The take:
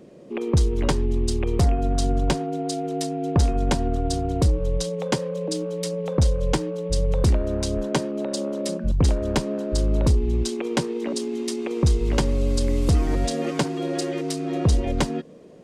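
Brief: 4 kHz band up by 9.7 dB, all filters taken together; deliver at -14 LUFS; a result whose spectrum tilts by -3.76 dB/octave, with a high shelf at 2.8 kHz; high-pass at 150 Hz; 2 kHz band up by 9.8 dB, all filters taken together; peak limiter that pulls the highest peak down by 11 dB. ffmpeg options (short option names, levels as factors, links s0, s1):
-af "highpass=150,equalizer=f=2000:t=o:g=8.5,highshelf=f=2800:g=6.5,equalizer=f=4000:t=o:g=4.5,volume=3.98,alimiter=limit=0.944:level=0:latency=1"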